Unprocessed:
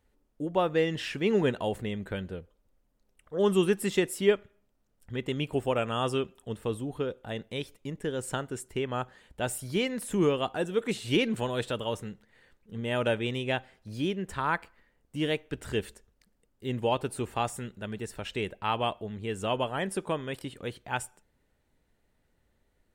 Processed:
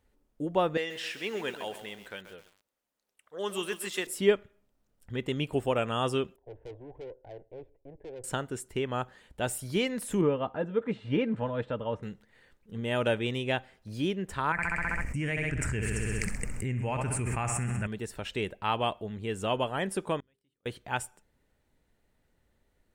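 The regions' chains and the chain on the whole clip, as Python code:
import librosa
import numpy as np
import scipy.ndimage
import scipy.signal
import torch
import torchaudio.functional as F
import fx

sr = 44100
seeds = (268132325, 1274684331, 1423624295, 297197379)

y = fx.chain(x, sr, fx.highpass(hz=1200.0, slope=6),
    fx.echo_crushed(ms=132, feedback_pct=55, bits=8, wet_db=-10.0), at=(0.77, 4.07))
y = fx.chain(y, sr, fx.lowpass(hz=1400.0, slope=24),
    fx.tube_stage(drive_db=38.0, bias=0.55),
    fx.fixed_phaser(hz=510.0, stages=4), at=(6.36, 8.24))
y = fx.chain(y, sr, fx.lowpass(hz=1700.0, slope=12),
    fx.notch_comb(f0_hz=370.0), at=(10.21, 12.03))
y = fx.chain(y, sr, fx.curve_eq(hz=(130.0, 280.0, 430.0, 960.0, 2400.0, 3500.0, 5400.0, 7900.0, 13000.0), db=(0, -9, -13, -9, 1, -27, -9, -2, -18)),
    fx.echo_feedback(ms=65, feedback_pct=58, wet_db=-11.5),
    fx.env_flatten(amount_pct=100), at=(14.52, 17.87))
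y = fx.chain(y, sr, fx.gate_flip(shuts_db=-41.0, range_db=-38),
    fx.hum_notches(base_hz=50, count=9), at=(20.2, 20.66))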